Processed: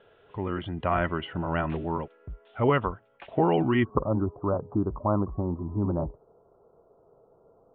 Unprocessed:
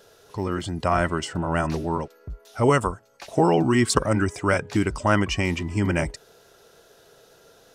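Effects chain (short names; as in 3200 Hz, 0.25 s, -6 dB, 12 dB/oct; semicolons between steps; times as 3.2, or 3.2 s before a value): steep low-pass 3400 Hz 72 dB/oct, from 3.83 s 1200 Hz; gain -4 dB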